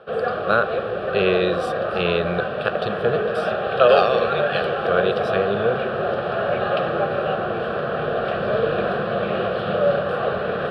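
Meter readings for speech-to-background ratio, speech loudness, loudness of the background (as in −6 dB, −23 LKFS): 1.0 dB, −22.5 LKFS, −23.5 LKFS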